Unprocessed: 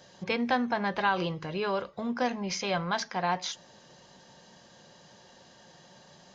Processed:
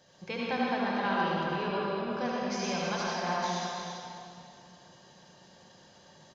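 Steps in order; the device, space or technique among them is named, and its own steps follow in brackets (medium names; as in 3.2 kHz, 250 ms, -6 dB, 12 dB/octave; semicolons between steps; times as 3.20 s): cave (delay 334 ms -8.5 dB; reverberation RT60 2.6 s, pre-delay 61 ms, DRR -5 dB); 1.68–2.11 s: low-pass 5.7 kHz 24 dB/octave; trim -8 dB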